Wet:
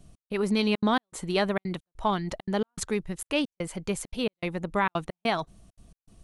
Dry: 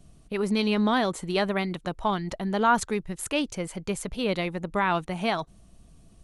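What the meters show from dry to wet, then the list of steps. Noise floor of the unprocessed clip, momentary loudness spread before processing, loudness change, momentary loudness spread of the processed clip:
−55 dBFS, 9 LU, −2.0 dB, 8 LU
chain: gate pattern "xx..xxxxxx." 200 BPM −60 dB

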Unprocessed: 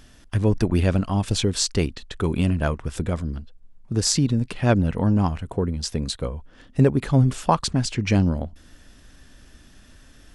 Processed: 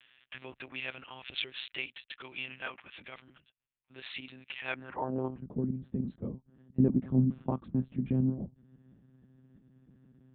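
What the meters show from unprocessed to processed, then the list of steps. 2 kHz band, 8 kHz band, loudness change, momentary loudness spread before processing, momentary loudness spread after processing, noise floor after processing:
−6.5 dB, below −40 dB, −11.5 dB, 9 LU, 19 LU, −80 dBFS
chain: one-pitch LPC vocoder at 8 kHz 130 Hz
band-pass filter sweep 2,600 Hz → 210 Hz, 0:04.69–0:05.41

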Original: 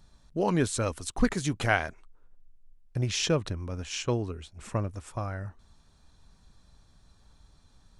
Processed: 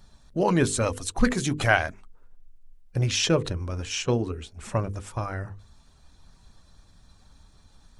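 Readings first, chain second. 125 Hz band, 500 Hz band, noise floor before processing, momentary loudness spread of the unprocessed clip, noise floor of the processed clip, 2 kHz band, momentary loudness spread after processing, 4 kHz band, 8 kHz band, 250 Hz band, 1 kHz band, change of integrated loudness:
+3.5 dB, +4.0 dB, −61 dBFS, 12 LU, −57 dBFS, +5.0 dB, 12 LU, +4.5 dB, +4.5 dB, +3.5 dB, +4.0 dB, +4.0 dB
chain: spectral magnitudes quantised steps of 15 dB
mains-hum notches 50/100/150/200/250/300/350/400/450/500 Hz
level +5 dB

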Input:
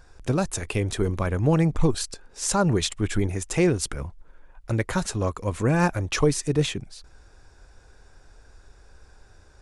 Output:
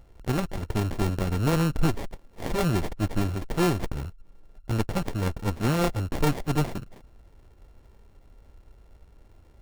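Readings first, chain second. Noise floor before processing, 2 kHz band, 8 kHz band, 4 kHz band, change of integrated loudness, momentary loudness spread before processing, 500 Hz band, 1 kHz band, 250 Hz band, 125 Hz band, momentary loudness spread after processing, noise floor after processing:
−53 dBFS, −4.0 dB, −11.0 dB, −5.0 dB, −3.0 dB, 8 LU, −4.5 dB, −1.5 dB, −2.5 dB, −2.0 dB, 11 LU, −55 dBFS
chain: samples sorted by size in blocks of 32 samples
windowed peak hold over 33 samples

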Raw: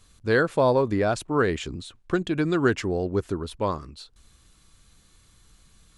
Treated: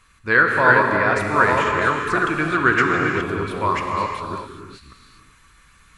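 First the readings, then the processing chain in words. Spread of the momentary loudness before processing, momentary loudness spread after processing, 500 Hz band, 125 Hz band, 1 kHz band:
12 LU, 11 LU, +1.5 dB, +1.5 dB, +11.5 dB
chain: delay that plays each chunk backwards 548 ms, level −3 dB
flat-topped bell 1,600 Hz +12.5 dB
reverb whose tail is shaped and stops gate 430 ms flat, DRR 1.5 dB
level −2.5 dB

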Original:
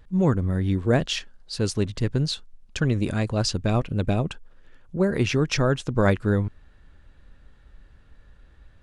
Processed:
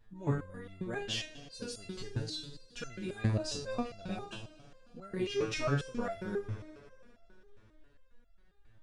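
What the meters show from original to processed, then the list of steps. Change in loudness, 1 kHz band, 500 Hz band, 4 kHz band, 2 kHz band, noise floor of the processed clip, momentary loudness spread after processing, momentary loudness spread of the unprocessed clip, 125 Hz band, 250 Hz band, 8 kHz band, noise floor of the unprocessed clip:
−13.0 dB, −11.0 dB, −12.0 dB, −9.5 dB, −11.0 dB, −63 dBFS, 14 LU, 10 LU, −14.0 dB, −14.5 dB, −10.5 dB, −53 dBFS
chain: peak hold with a decay on every bin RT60 0.34 s
mains-hum notches 50/100/150 Hz
echo machine with several playback heads 81 ms, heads all three, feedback 73%, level −24 dB
step-sequenced resonator 7.4 Hz 110–680 Hz

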